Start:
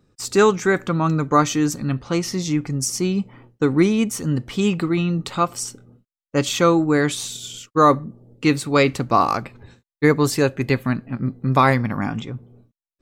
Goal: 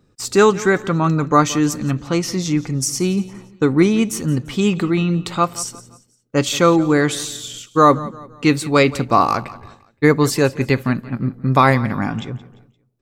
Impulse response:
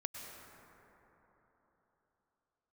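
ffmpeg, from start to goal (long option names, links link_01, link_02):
-af "aecho=1:1:173|346|519:0.119|0.0464|0.0181,volume=2.5dB"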